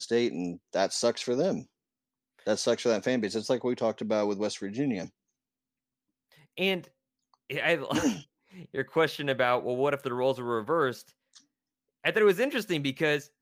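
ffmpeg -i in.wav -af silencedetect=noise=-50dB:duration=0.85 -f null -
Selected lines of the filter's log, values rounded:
silence_start: 5.09
silence_end: 6.32 | silence_duration: 1.23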